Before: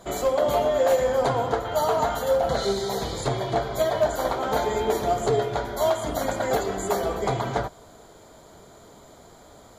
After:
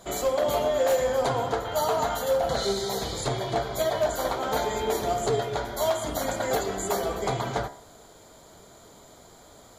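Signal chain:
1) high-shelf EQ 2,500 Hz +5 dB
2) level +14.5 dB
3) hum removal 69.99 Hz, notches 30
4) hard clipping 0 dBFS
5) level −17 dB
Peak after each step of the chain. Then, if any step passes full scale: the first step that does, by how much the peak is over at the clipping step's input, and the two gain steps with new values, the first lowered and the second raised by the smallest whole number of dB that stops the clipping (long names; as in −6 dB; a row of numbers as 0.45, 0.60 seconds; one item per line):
−10.0, +4.5, +4.0, 0.0, −17.0 dBFS
step 2, 4.0 dB
step 2 +10.5 dB, step 5 −13 dB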